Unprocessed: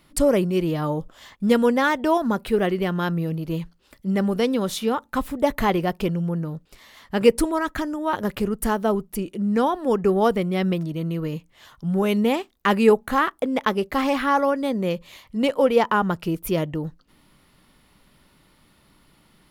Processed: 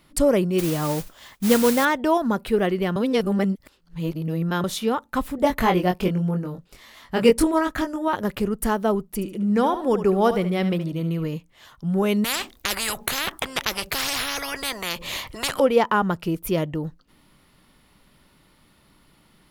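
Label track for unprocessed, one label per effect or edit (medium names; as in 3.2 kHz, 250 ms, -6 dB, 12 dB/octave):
0.580000	1.850000	modulation noise under the signal 11 dB
2.960000	4.640000	reverse
5.360000	8.080000	doubling 22 ms -4 dB
9.140000	11.250000	feedback delay 73 ms, feedback 29%, level -11 dB
12.240000	15.600000	spectrum-flattening compressor 10:1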